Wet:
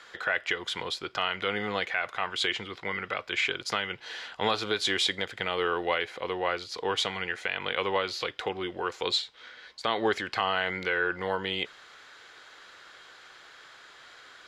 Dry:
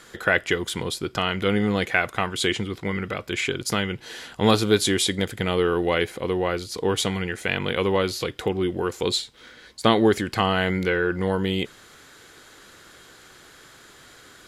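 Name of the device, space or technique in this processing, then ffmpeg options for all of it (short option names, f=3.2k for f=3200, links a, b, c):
DJ mixer with the lows and highs turned down: -filter_complex "[0:a]acrossover=split=540 5500:gain=0.158 1 0.0891[a][b][c];[a][b][c]amix=inputs=3:normalize=0,alimiter=limit=-14dB:level=0:latency=1:release=138"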